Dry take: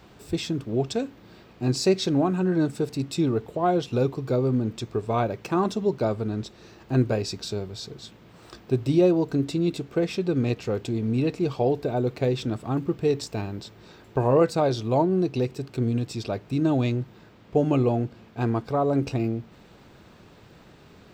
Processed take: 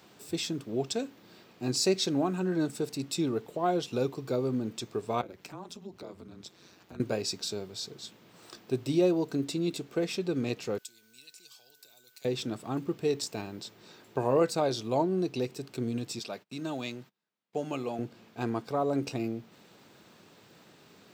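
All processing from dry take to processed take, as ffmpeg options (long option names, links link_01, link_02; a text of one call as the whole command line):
ffmpeg -i in.wav -filter_complex "[0:a]asettb=1/sr,asplit=3[link_01][link_02][link_03];[link_01]atrim=end=5.214[link_04];[link_02]atrim=start=5.21:end=7,asetpts=PTS-STARTPTS,afade=type=in:duration=0.004:curve=qsin,afade=type=out:start_time=1.786:duration=0.004:curve=qsin,afreqshift=-110,acompressor=threshold=-35dB:ratio=2.5:attack=3.2:release=140:knee=1:detection=peak,aeval=exprs='val(0)*sin(2*PI*91*n/s)':channel_layout=same[link_05];[link_03]atrim=start=6.996[link_06];[link_04][link_05]acrossfade=duration=0.004:curve1=hsin:curve2=qsin[link_07];[link_07][link_06]acrossfade=duration=0.004:curve1=qsin:curve2=hsin,asettb=1/sr,asplit=3[link_08][link_09][link_10];[link_08]atrim=end=10.784[link_11];[link_09]atrim=start=10.78:end=12.25,asetpts=PTS-STARTPTS,afade=type=in:duration=0.004:curve=qsin,afade=type=out:start_time=1.466:duration=0.004:curve=qsin,aderivative,acrossover=split=140|3000[link_12][link_13][link_14];[link_13]acompressor=threshold=-59dB:ratio=6:attack=3.2:release=140:knee=2.83:detection=peak[link_15];[link_12][link_15][link_14]amix=inputs=3:normalize=0,aeval=exprs='val(0)+0.000631*sin(2*PI*1500*n/s)':channel_layout=same[link_16];[link_10]atrim=start=12.246[link_17];[link_11][link_16]acrossfade=duration=0.004:curve1=hsin:curve2=qsin[link_18];[link_18][link_17]acrossfade=duration=0.004:curve1=qsin:curve2=hsin,asettb=1/sr,asplit=3[link_19][link_20][link_21];[link_19]atrim=end=16.194[link_22];[link_20]atrim=start=16.19:end=17.99,asetpts=PTS-STARTPTS,afade=type=in:duration=0.004:curve=qsin,afade=type=out:start_time=1.796:duration=0.004:curve=qsin,agate=range=-29dB:threshold=-44dB:ratio=16:release=100:detection=peak,highpass=frequency=200:width_type=q:width=1.8,equalizer=frequency=270:width=0.66:gain=-12[link_23];[link_21]atrim=start=17.986[link_24];[link_22][link_23]acrossfade=duration=0.004:curve1=hsin:curve2=qsin[link_25];[link_25][link_24]acrossfade=duration=0.004:curve1=qsin:curve2=hsin,highpass=160,highshelf=frequency=4000:gain=9.5,volume=-5.5dB" out.wav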